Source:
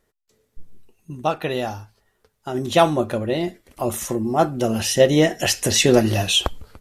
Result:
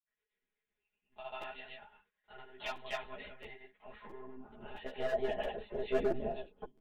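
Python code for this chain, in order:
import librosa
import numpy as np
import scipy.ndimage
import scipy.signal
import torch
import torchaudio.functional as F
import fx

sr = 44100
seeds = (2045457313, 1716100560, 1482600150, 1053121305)

y = fx.hum_notches(x, sr, base_hz=60, count=6)
y = fx.granulator(y, sr, seeds[0], grain_ms=198.0, per_s=16.0, spray_ms=195.0, spread_st=0)
y = fx.filter_sweep_bandpass(y, sr, from_hz=2100.0, to_hz=390.0, start_s=3.43, end_s=6.68, q=1.5)
y = fx.dynamic_eq(y, sr, hz=370.0, q=0.77, threshold_db=-33.0, ratio=4.0, max_db=3)
y = fx.lpc_monotone(y, sr, seeds[1], pitch_hz=130.0, order=16)
y = fx.peak_eq(y, sr, hz=1200.0, db=-8.5, octaves=0.21)
y = np.clip(y, -10.0 ** (-19.0 / 20.0), 10.0 ** (-19.0 / 20.0))
y = y + 0.97 * np.pad(y, (int(4.8 * sr / 1000.0), 0))[:len(y)]
y = fx.buffer_crackle(y, sr, first_s=0.74, period_s=0.67, block=256, kind='repeat')
y = fx.ensemble(y, sr)
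y = F.gain(torch.from_numpy(y), -7.5).numpy()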